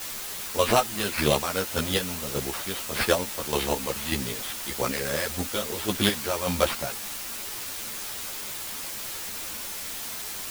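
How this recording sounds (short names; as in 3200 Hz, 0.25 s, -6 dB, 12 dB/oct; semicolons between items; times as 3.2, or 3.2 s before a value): aliases and images of a low sample rate 6800 Hz, jitter 0%; chopped level 1.7 Hz, depth 60%, duty 35%; a quantiser's noise floor 6-bit, dither triangular; a shimmering, thickened sound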